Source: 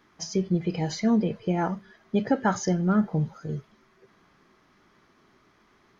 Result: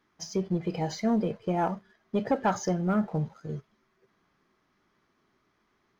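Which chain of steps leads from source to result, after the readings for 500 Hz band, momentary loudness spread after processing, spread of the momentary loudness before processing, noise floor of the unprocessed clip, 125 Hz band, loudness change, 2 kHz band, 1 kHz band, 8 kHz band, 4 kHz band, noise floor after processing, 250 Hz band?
-1.0 dB, 10 LU, 10 LU, -63 dBFS, -4.0 dB, -3.0 dB, -4.0 dB, 0.0 dB, n/a, -4.0 dB, -73 dBFS, -4.0 dB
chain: dynamic EQ 700 Hz, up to +7 dB, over -41 dBFS, Q 1; sample leveller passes 1; gain -8 dB

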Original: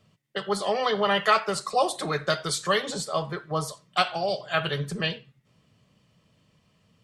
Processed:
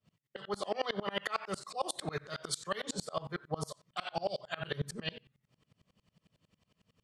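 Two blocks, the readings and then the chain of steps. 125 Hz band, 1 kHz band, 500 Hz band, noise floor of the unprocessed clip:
-9.0 dB, -13.0 dB, -11.5 dB, -66 dBFS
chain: limiter -18.5 dBFS, peak gain reduction 11.5 dB; dB-ramp tremolo swelling 11 Hz, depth 28 dB

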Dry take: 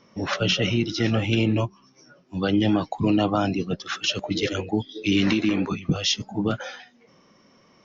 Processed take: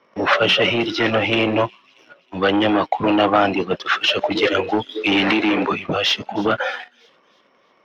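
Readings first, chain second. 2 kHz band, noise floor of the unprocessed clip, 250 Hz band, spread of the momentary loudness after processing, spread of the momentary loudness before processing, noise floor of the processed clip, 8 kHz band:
+10.0 dB, -58 dBFS, +2.0 dB, 7 LU, 8 LU, -59 dBFS, n/a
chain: sample leveller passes 2; three-band isolator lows -17 dB, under 360 Hz, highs -23 dB, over 3400 Hz; thin delay 0.317 s, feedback 43%, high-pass 4200 Hz, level -18 dB; gain +6 dB

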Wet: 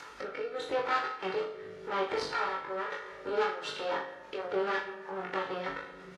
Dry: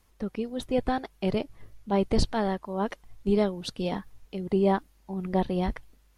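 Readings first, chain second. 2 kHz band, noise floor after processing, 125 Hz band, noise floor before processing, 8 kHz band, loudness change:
+5.5 dB, -49 dBFS, -21.0 dB, -62 dBFS, -7.0 dB, -5.5 dB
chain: minimum comb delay 2.2 ms; bell 1400 Hz +11.5 dB 1 oct; shoebox room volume 500 m³, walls mixed, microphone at 0.32 m; rotary speaker horn 0.8 Hz, later 6.3 Hz, at 2.79; soft clip -26.5 dBFS, distortion -10 dB; BPF 300–4900 Hz; flutter echo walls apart 6.7 m, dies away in 0.4 s; upward compressor, threshold -33 dBFS; doubler 21 ms -2 dB; Vorbis 32 kbps 48000 Hz

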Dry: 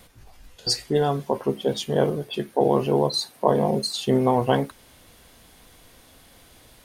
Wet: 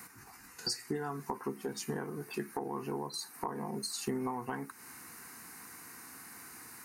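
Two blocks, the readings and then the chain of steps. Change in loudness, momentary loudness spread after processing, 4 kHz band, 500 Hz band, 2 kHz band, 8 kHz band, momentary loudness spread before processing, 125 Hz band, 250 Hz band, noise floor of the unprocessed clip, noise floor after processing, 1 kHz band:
-16.5 dB, 12 LU, -13.5 dB, -18.5 dB, -7.5 dB, -6.0 dB, 6 LU, -17.5 dB, -13.5 dB, -53 dBFS, -55 dBFS, -14.0 dB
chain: HPF 200 Hz 12 dB/oct; low shelf 320 Hz -4.5 dB; compressor 16:1, threshold -33 dBFS, peak gain reduction 19.5 dB; fixed phaser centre 1400 Hz, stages 4; gain +7 dB

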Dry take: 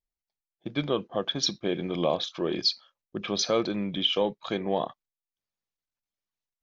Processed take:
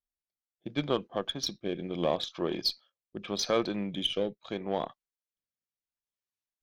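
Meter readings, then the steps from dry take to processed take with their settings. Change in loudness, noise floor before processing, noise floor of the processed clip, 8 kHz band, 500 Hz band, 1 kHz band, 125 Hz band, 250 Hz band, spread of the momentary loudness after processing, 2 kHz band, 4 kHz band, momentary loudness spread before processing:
-4.0 dB, under -85 dBFS, under -85 dBFS, n/a, -3.5 dB, -3.0 dB, -3.5 dB, -3.5 dB, 11 LU, -3.5 dB, -5.0 dB, 10 LU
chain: added harmonics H 2 -27 dB, 3 -22 dB, 6 -38 dB, 7 -35 dB, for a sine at -12.5 dBFS; rotary speaker horn 0.75 Hz

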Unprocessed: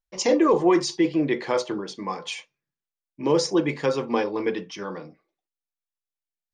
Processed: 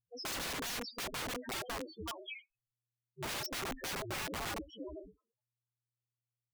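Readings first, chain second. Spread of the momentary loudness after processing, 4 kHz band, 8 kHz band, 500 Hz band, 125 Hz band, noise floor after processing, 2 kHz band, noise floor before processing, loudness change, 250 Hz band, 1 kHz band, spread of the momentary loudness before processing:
10 LU, -7.5 dB, -7.5 dB, -22.5 dB, -14.0 dB, under -85 dBFS, -7.5 dB, under -85 dBFS, -16.0 dB, -23.0 dB, -14.0 dB, 15 LU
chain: ring modulator 120 Hz; loudest bins only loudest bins 2; wrapped overs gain 35 dB; gain +1 dB

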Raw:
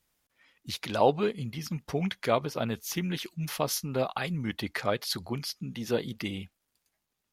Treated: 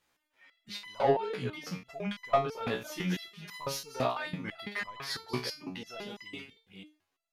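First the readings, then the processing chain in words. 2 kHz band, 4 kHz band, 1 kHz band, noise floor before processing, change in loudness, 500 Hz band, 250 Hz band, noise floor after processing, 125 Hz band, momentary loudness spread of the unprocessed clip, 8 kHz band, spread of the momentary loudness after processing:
-1.0 dB, -4.0 dB, -1.5 dB, -82 dBFS, -3.5 dB, -3.5 dB, -5.5 dB, -82 dBFS, -6.5 dB, 11 LU, -8.0 dB, 15 LU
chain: reverse delay 0.274 s, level -11 dB; overdrive pedal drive 15 dB, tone 2100 Hz, clips at -9.5 dBFS; stepped resonator 6 Hz 62–1000 Hz; gain +5.5 dB

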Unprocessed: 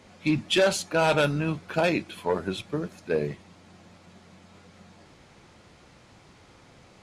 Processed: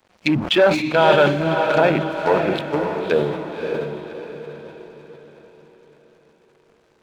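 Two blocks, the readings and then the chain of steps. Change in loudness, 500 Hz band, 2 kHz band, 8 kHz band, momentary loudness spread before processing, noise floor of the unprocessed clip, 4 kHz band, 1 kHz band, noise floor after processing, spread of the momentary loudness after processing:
+7.5 dB, +9.0 dB, +7.5 dB, n/a, 11 LU, -55 dBFS, +5.5 dB, +10.0 dB, -59 dBFS, 18 LU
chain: Wiener smoothing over 25 samples; treble ducked by the level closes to 1200 Hz, closed at -23.5 dBFS; tilt +3.5 dB/oct; in parallel at -2.5 dB: limiter -20.5 dBFS, peak gain reduction 6.5 dB; on the sum: crossover distortion -52 dBFS; on a send: diffused feedback echo 0.577 s, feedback 44%, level -4.5 dB; on the sum: sustainer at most 83 dB/s; gain +7.5 dB

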